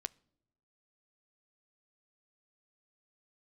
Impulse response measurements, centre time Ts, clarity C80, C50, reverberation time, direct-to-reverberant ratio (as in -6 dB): 1 ms, 29.5 dB, 26.0 dB, not exponential, 17.0 dB